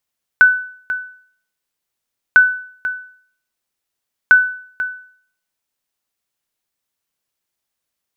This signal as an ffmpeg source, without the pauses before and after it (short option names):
-f lavfi -i "aevalsrc='0.841*(sin(2*PI*1500*mod(t,1.95))*exp(-6.91*mod(t,1.95)/0.54)+0.224*sin(2*PI*1500*max(mod(t,1.95)-0.49,0))*exp(-6.91*max(mod(t,1.95)-0.49,0)/0.54))':d=5.85:s=44100"